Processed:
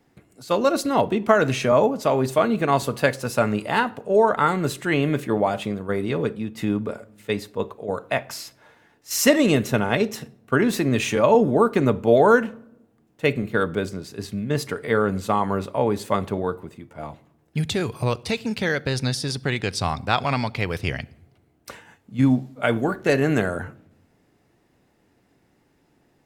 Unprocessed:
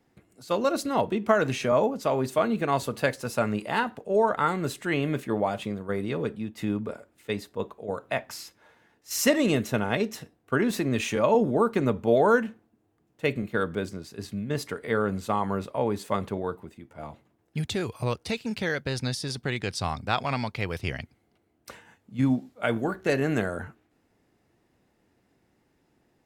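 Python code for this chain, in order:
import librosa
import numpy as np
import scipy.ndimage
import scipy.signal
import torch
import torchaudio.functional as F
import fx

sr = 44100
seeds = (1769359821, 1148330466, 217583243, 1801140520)

y = fx.room_shoebox(x, sr, seeds[0], volume_m3=2400.0, walls='furnished', distance_m=0.31)
y = y * librosa.db_to_amplitude(5.0)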